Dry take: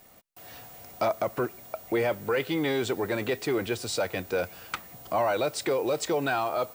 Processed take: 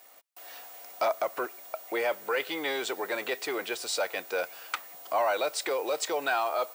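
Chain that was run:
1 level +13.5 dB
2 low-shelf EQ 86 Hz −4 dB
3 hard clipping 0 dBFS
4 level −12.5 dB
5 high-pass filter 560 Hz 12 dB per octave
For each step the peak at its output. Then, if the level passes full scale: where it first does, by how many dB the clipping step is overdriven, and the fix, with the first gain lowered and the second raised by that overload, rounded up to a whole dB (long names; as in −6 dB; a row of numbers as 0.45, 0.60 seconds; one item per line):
−2.0, −2.0, −2.0, −14.5, −14.0 dBFS
no step passes full scale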